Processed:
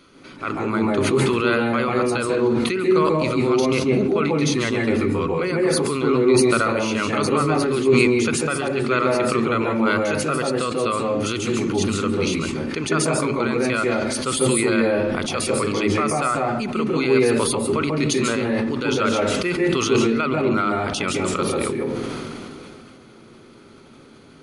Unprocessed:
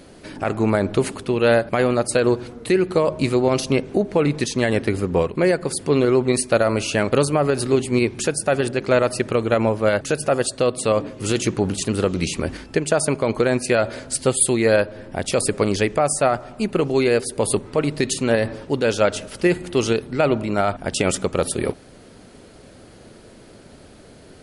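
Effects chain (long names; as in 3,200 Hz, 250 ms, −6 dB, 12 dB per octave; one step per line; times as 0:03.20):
convolution reverb RT60 0.45 s, pre-delay 136 ms, DRR 2.5 dB
level that may fall only so fast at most 20 dB per second
level −8.5 dB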